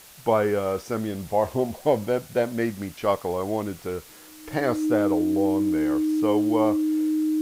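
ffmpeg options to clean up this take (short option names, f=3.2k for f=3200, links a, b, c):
-af "adeclick=t=4,bandreject=f=310:w=30,afwtdn=0.0045"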